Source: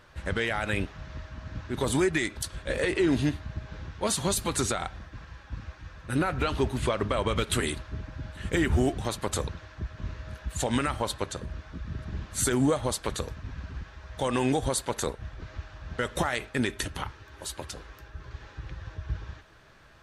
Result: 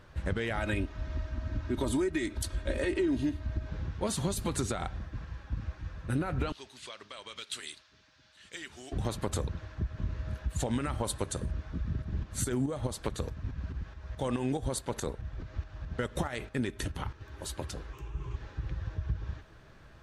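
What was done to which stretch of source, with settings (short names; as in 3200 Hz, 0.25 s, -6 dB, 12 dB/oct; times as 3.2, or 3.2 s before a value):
0.57–3.7 comb 3.2 ms
6.52–8.92 band-pass 4900 Hz, Q 1.3
11.04–11.51 bell 9400 Hz +12.5 dB
12.02–17.21 tremolo saw up 4.7 Hz, depth 55%
17.93–18.36 ripple EQ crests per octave 0.7, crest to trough 12 dB
whole clip: low shelf 500 Hz +8.5 dB; compressor 4:1, threshold -24 dBFS; gain -4 dB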